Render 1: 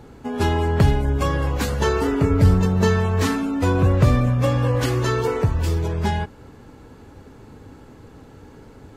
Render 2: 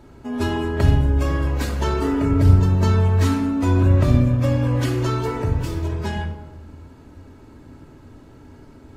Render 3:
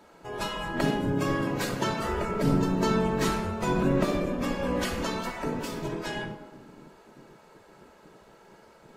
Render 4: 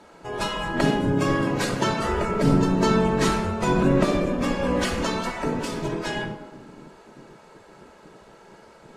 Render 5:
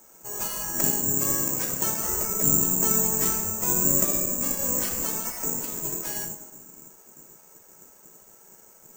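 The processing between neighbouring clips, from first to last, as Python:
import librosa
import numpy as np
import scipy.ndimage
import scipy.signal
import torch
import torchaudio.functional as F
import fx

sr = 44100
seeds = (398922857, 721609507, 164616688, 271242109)

y1 = fx.room_shoebox(x, sr, seeds[0], volume_m3=4000.0, walls='furnished', distance_m=2.8)
y1 = y1 * 10.0 ** (-4.5 / 20.0)
y2 = fx.octave_divider(y1, sr, octaves=1, level_db=-5.0)
y2 = fx.spec_gate(y2, sr, threshold_db=-10, keep='weak')
y2 = y2 * 10.0 ** (-1.0 / 20.0)
y3 = scipy.signal.sosfilt(scipy.signal.butter(4, 11000.0, 'lowpass', fs=sr, output='sos'), y2)
y3 = y3 * 10.0 ** (5.0 / 20.0)
y4 = (np.kron(scipy.signal.resample_poly(y3, 1, 6), np.eye(6)[0]) * 6)[:len(y3)]
y4 = y4 * 10.0 ** (-10.5 / 20.0)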